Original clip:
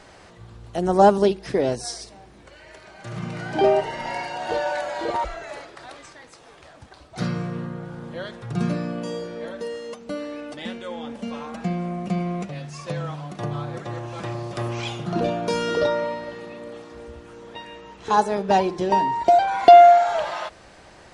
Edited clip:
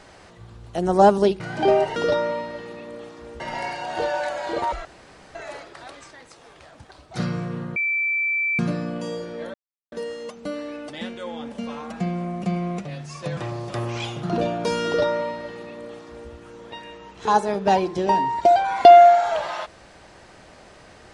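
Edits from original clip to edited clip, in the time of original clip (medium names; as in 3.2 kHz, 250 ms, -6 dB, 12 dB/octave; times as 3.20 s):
1.40–3.36 s: delete
5.37 s: insert room tone 0.50 s
7.78–8.61 s: bleep 2.33 kHz -20 dBFS
9.56 s: insert silence 0.38 s
13.01–14.20 s: delete
15.69–17.13 s: copy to 3.92 s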